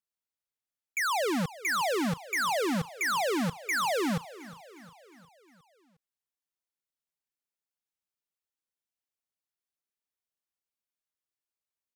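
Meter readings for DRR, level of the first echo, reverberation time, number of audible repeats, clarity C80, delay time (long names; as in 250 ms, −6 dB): no reverb audible, −18.0 dB, no reverb audible, 4, no reverb audible, 358 ms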